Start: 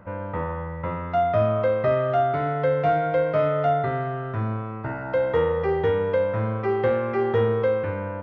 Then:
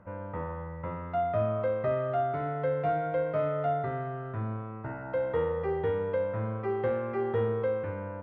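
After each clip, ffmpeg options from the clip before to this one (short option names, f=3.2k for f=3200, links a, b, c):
-af "aemphasis=mode=reproduction:type=75kf,volume=-7dB"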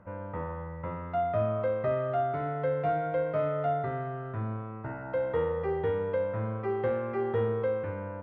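-af anull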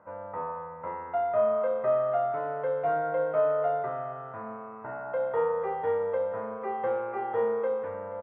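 -filter_complex "[0:a]bandpass=f=880:t=q:w=1.1:csg=0,asplit=2[a][b];[b]adelay=32,volume=-3.5dB[c];[a][c]amix=inputs=2:normalize=0,aecho=1:1:478:0.15,volume=3.5dB"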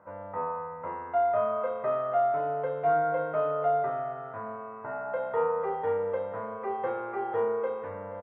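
-filter_complex "[0:a]asplit=2[a][b];[b]adelay=20,volume=-6.5dB[c];[a][c]amix=inputs=2:normalize=0"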